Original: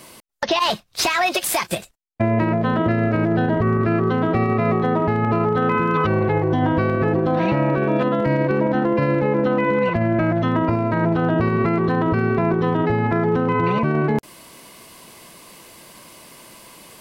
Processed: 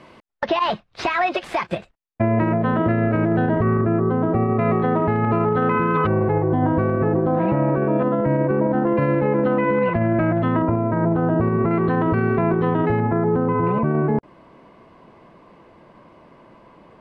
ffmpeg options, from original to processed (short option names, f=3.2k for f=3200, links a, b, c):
-af "asetnsamples=n=441:p=0,asendcmd='3.81 lowpass f 1100;4.59 lowpass f 2400;6.07 lowpass f 1300;8.87 lowpass f 2200;10.62 lowpass f 1200;11.71 lowpass f 2400;13 lowpass f 1200',lowpass=2.2k"